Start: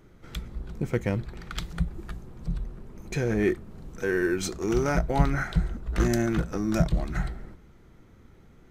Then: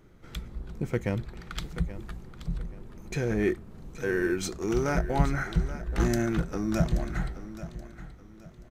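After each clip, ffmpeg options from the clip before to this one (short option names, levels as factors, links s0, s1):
-af "aecho=1:1:828|1656|2484:0.2|0.0638|0.0204,volume=0.794"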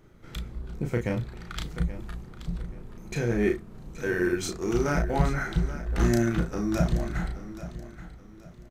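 -filter_complex "[0:a]asplit=2[s0][s1];[s1]adelay=34,volume=0.631[s2];[s0][s2]amix=inputs=2:normalize=0"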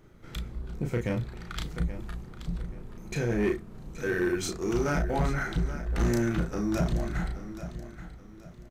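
-af "asoftclip=type=tanh:threshold=0.112"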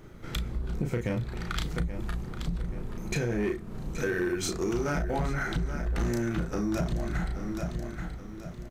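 -af "acompressor=threshold=0.02:ratio=5,volume=2.24"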